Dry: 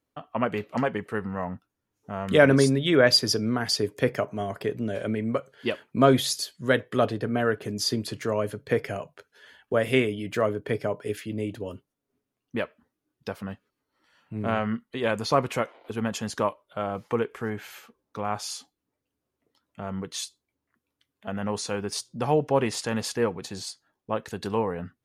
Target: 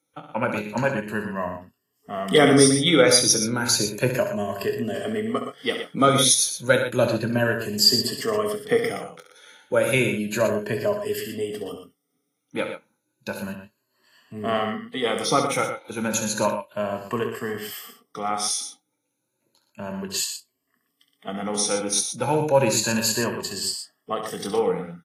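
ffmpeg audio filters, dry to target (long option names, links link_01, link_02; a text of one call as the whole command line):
ffmpeg -i in.wav -filter_complex "[0:a]afftfilt=real='re*pow(10,15/40*sin(2*PI*(1.4*log(max(b,1)*sr/1024/100)/log(2)-(0.32)*(pts-256)/sr)))':imag='im*pow(10,15/40*sin(2*PI*(1.4*log(max(b,1)*sr/1024/100)/log(2)-(0.32)*(pts-256)/sr)))':win_size=1024:overlap=0.75,highpass=frequency=120:width=0.5412,highpass=frequency=120:width=1.3066,highshelf=frequency=4500:gain=11.5,asplit=2[link_01][link_02];[link_02]adelay=24,volume=-11.5dB[link_03];[link_01][link_03]amix=inputs=2:normalize=0,aecho=1:1:67.06|119.5:0.355|0.355,volume=-1dB" -ar 32000 -c:a aac -b:a 48k out.aac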